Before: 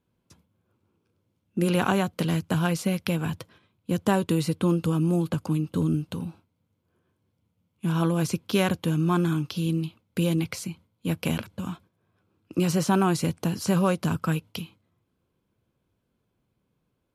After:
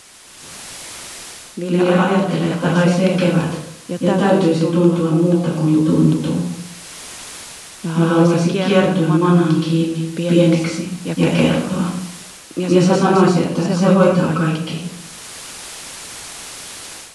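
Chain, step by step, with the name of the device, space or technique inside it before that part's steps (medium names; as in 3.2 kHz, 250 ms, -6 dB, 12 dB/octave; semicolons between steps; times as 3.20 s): filmed off a television (band-pass 160–6400 Hz; peaking EQ 520 Hz +4.5 dB 0.77 oct; reverberation RT60 0.65 s, pre-delay 116 ms, DRR -7 dB; white noise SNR 22 dB; level rider; trim -1 dB; AAC 96 kbps 24 kHz)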